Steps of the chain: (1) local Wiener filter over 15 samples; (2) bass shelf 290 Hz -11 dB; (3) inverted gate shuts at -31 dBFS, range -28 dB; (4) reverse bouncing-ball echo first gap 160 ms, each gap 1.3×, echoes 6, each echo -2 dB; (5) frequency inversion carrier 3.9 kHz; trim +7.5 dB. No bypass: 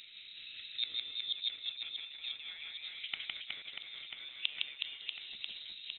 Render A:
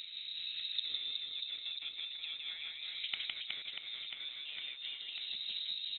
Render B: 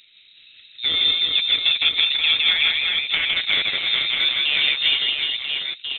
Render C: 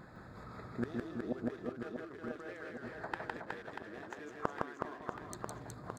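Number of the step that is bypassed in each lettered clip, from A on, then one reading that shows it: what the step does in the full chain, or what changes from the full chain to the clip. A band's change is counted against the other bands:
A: 2, crest factor change -7.0 dB; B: 3, momentary loudness spread change -3 LU; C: 5, loudness change -3.5 LU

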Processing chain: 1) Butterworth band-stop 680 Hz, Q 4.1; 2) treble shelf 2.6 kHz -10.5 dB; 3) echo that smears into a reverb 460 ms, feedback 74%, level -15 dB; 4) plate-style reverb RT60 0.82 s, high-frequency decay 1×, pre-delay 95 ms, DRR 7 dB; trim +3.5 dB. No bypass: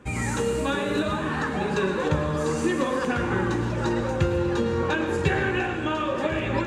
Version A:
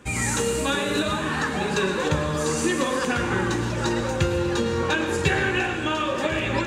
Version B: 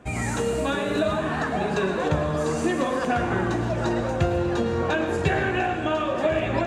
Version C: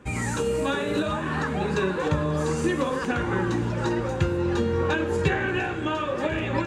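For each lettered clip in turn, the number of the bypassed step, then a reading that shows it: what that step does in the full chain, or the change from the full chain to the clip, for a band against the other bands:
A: 2, 8 kHz band +8.5 dB; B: 1, 1 kHz band +2.0 dB; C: 4, echo-to-direct -5.5 dB to -11.5 dB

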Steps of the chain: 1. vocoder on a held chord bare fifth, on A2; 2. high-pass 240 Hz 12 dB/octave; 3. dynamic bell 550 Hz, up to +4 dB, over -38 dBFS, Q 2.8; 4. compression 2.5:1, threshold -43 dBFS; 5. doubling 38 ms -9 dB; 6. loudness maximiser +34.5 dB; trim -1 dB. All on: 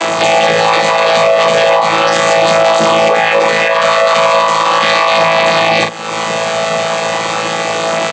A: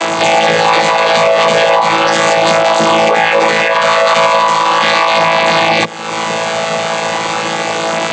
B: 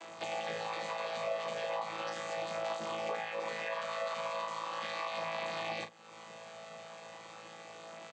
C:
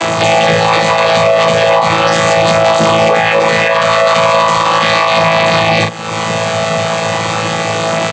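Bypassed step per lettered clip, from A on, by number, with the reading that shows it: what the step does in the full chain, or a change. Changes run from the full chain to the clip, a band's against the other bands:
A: 5, 250 Hz band +1.5 dB; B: 6, crest factor change +6.5 dB; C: 2, 125 Hz band +8.5 dB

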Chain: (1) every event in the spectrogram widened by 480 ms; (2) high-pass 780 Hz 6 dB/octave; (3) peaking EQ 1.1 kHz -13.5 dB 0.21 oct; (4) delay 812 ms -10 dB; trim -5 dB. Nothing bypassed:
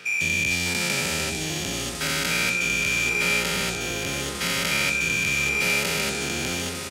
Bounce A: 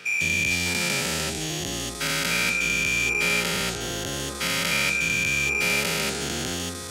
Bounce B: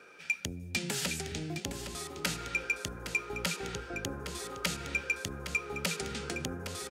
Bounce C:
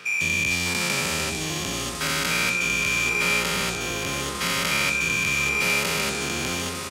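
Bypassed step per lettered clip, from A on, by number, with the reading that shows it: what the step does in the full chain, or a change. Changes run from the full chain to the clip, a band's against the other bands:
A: 4, momentary loudness spread change +1 LU; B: 1, 2 kHz band -4.0 dB; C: 3, 1 kHz band +3.0 dB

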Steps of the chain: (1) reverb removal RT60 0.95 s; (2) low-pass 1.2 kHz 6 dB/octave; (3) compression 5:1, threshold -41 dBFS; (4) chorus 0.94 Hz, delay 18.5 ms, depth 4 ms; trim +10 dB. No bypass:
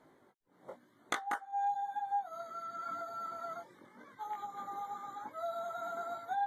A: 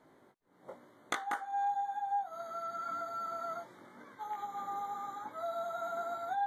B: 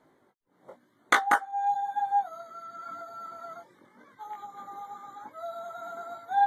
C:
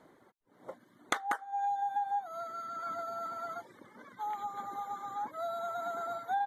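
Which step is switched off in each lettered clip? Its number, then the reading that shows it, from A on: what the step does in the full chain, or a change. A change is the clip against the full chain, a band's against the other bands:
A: 1, 500 Hz band +1.5 dB; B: 3, mean gain reduction 2.5 dB; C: 4, crest factor change +2.0 dB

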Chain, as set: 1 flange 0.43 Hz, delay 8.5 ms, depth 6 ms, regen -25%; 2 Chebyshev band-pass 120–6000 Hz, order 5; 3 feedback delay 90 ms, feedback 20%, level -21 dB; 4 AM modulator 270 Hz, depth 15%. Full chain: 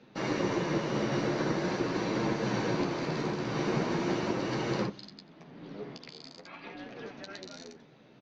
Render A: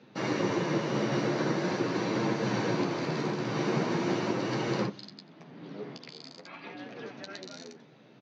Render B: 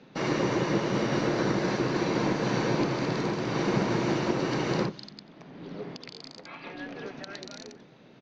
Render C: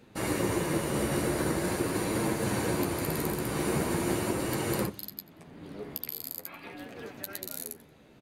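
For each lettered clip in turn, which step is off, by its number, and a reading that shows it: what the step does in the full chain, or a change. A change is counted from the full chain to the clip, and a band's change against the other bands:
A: 4, loudness change +1.0 LU; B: 1, loudness change +3.5 LU; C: 2, momentary loudness spread change -2 LU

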